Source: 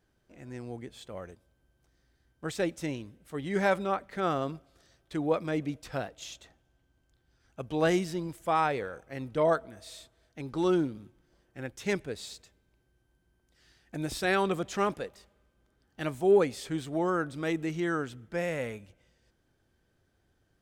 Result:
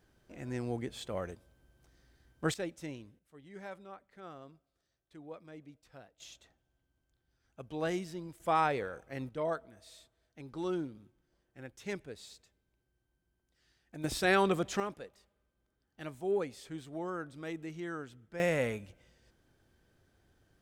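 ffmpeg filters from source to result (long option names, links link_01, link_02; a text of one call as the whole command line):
ffmpeg -i in.wav -af "asetnsamples=nb_out_samples=441:pad=0,asendcmd='2.54 volume volume -8.5dB;3.19 volume volume -19.5dB;6.2 volume volume -8.5dB;8.4 volume volume -2dB;9.29 volume volume -9dB;14.04 volume volume 0dB;14.8 volume volume -10dB;18.4 volume volume 2.5dB',volume=4dB" out.wav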